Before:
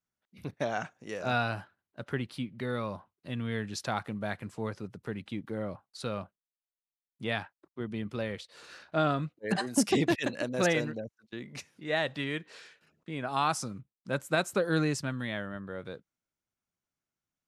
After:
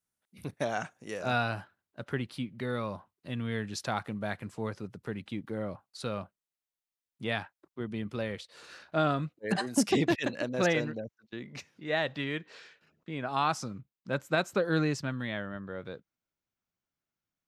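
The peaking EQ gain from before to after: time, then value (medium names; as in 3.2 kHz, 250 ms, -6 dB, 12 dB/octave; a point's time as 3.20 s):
peaking EQ 9.9 kHz 0.7 oct
0.94 s +11 dB
1.48 s 0 dB
9.55 s 0 dB
10.61 s -12 dB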